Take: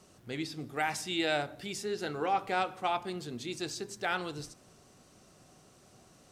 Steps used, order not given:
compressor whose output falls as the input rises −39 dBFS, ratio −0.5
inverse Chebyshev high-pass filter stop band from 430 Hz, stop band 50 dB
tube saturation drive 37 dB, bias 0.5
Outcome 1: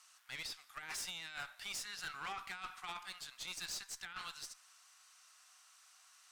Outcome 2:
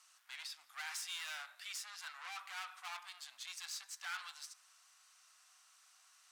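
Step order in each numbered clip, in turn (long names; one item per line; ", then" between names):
inverse Chebyshev high-pass filter, then compressor whose output falls as the input rises, then tube saturation
tube saturation, then inverse Chebyshev high-pass filter, then compressor whose output falls as the input rises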